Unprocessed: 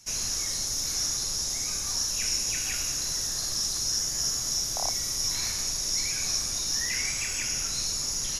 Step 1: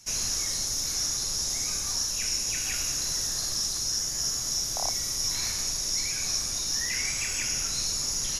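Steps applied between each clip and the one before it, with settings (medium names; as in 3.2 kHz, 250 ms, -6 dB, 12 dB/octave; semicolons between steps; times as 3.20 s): gain riding 0.5 s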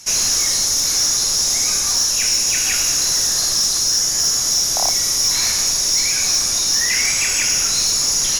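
bass shelf 210 Hz -9 dB; in parallel at -6 dB: sine folder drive 7 dB, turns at -15.5 dBFS; on the sum: trim +4.5 dB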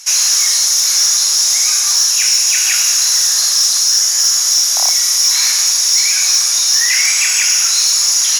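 high-pass 1.1 kHz 12 dB/octave; trim +5 dB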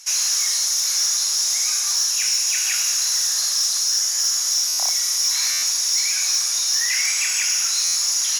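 buffer glitch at 4.67/5.51/7.84 s, samples 512, times 9; trim -8 dB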